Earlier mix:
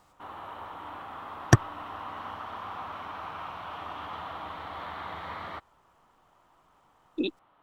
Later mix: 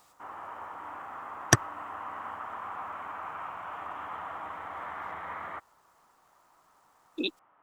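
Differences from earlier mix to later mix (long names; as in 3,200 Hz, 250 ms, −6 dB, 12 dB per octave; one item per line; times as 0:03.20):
background: add low-pass filter 2,100 Hz 24 dB per octave
master: add spectral tilt +2.5 dB per octave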